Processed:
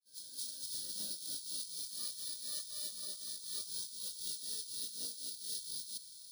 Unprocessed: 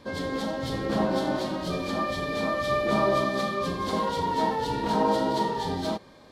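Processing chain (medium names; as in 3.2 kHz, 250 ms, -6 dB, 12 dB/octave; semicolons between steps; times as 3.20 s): fade-in on the opening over 1.27 s; inverse Chebyshev high-pass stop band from 2.4 kHz, stop band 40 dB; compressor with a negative ratio -55 dBFS, ratio -1; careless resampling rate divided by 3×, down filtered, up zero stuff; trim +7 dB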